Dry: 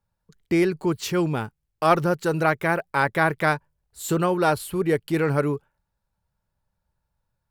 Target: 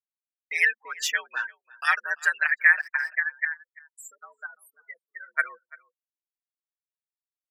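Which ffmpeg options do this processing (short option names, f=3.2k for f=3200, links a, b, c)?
-filter_complex "[0:a]aemphasis=mode=production:type=50fm,asplit=3[a][b][c];[a]afade=t=out:st=2.95:d=0.02[d];[b]acompressor=threshold=-31dB:ratio=16,afade=t=in:st=2.95:d=0.02,afade=t=out:st=5.37:d=0.02[e];[c]afade=t=in:st=5.37:d=0.02[f];[d][e][f]amix=inputs=3:normalize=0,bandreject=f=4.2k:w=13,afftfilt=real='re*gte(hypot(re,im),0.0398)':imag='im*gte(hypot(re,im),0.0398)':win_size=1024:overlap=0.75,highpass=f=1.7k:t=q:w=14,agate=range=-33dB:threshold=-42dB:ratio=3:detection=peak,lowpass=7.3k,asplit=2[g][h];[h]adelay=340,highpass=300,lowpass=3.4k,asoftclip=type=hard:threshold=-9dB,volume=-22dB[i];[g][i]amix=inputs=2:normalize=0,alimiter=limit=-8.5dB:level=0:latency=1:release=308,afreqshift=78,aecho=1:1:6.4:0.8,volume=-3.5dB"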